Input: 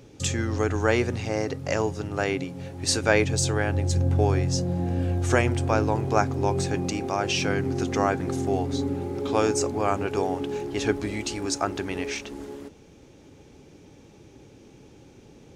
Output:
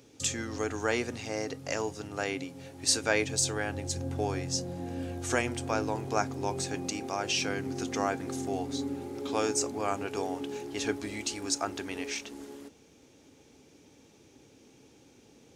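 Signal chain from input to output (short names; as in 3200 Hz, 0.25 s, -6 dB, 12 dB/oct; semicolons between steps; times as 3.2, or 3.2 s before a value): HPF 150 Hz 6 dB/oct; high shelf 3400 Hz +8 dB; on a send: reverb, pre-delay 3 ms, DRR 15.5 dB; on the sum: gain -7 dB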